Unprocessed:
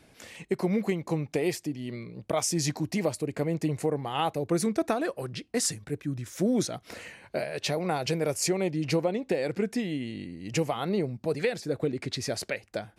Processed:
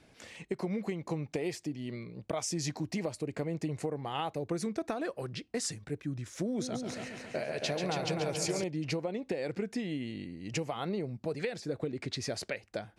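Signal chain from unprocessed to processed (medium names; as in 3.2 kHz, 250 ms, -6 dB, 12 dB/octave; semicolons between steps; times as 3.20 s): low-pass 8.5 kHz 12 dB/octave; compression, threshold -27 dBFS, peak gain reduction 6.5 dB; 6.45–8.64 s: multi-head delay 138 ms, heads first and second, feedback 47%, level -7 dB; trim -3 dB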